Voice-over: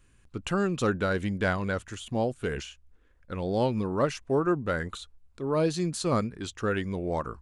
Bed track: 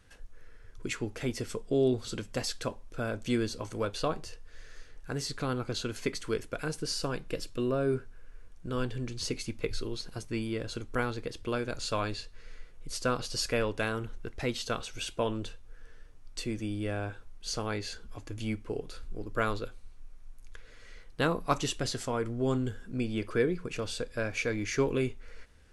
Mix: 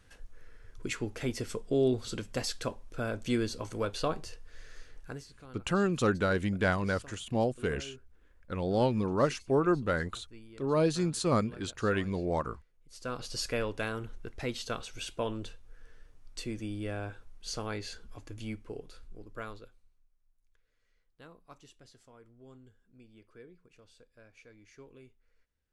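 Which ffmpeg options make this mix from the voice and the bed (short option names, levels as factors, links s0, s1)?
-filter_complex "[0:a]adelay=5200,volume=0.891[s0];[1:a]volume=5.96,afade=t=out:st=4.99:d=0.26:silence=0.11885,afade=t=in:st=12.89:d=0.42:silence=0.158489,afade=t=out:st=17.95:d=2.14:silence=0.0794328[s1];[s0][s1]amix=inputs=2:normalize=0"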